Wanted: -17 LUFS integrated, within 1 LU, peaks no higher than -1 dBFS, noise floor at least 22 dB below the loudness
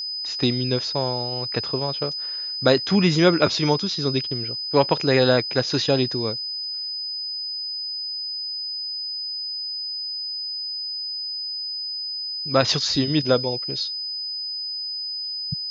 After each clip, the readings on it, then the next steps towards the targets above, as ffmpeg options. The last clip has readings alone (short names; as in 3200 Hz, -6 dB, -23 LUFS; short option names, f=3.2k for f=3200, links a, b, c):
steady tone 5000 Hz; tone level -27 dBFS; loudness -23.0 LUFS; peak -2.5 dBFS; loudness target -17.0 LUFS
-> -af "bandreject=f=5k:w=30"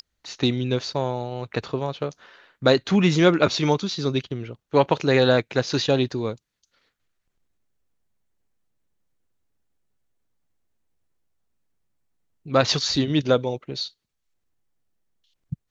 steady tone none; loudness -22.5 LUFS; peak -3.0 dBFS; loudness target -17.0 LUFS
-> -af "volume=5.5dB,alimiter=limit=-1dB:level=0:latency=1"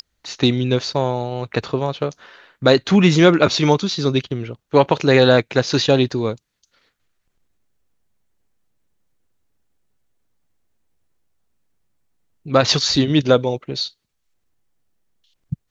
loudness -17.5 LUFS; peak -1.0 dBFS; noise floor -73 dBFS